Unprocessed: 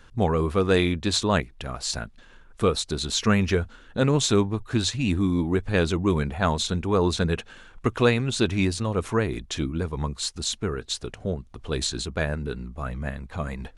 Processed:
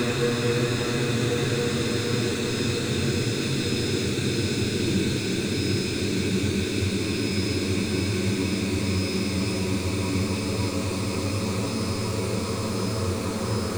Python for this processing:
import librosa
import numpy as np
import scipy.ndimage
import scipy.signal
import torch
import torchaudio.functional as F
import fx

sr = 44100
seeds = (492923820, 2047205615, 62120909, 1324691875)

y = x + 0.5 * 10.0 ** (-30.5 / 20.0) * np.sign(x)
y = y + 10.0 ** (-38.0 / 20.0) * np.sin(2.0 * np.pi * 5100.0 * np.arange(len(y)) / sr)
y = fx.paulstretch(y, sr, seeds[0], factor=19.0, window_s=1.0, from_s=8.2)
y = y * librosa.db_to_amplitude(-3.0)